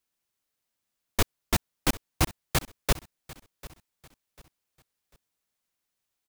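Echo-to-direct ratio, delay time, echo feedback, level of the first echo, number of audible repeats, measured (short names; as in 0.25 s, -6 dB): -19.0 dB, 0.745 s, 33%, -19.5 dB, 2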